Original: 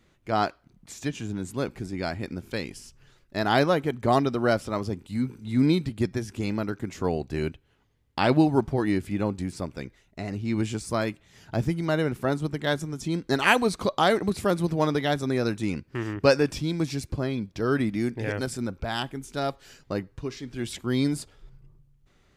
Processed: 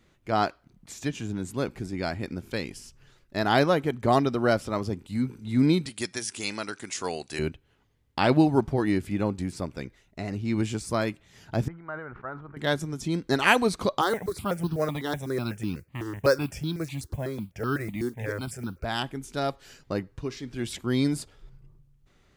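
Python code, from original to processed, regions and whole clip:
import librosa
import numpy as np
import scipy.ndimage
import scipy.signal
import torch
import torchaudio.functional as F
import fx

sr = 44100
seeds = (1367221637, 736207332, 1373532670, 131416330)

y = fx.chain(x, sr, fx.brickwall_lowpass(high_hz=11000.0),
    fx.tilt_eq(slope=4.5), at=(5.86, 7.39))
y = fx.chain(y, sr, fx.ladder_lowpass(hz=1600.0, resonance_pct=50),
    fx.peak_eq(hz=230.0, db=-11.0, octaves=2.5),
    fx.sustainer(db_per_s=67.0), at=(11.68, 12.57))
y = fx.chain(y, sr, fx.highpass(hz=44.0, slope=12),
    fx.mod_noise(seeds[0], snr_db=27),
    fx.phaser_held(hz=8.0, low_hz=640.0, high_hz=2100.0), at=(14.01, 18.84))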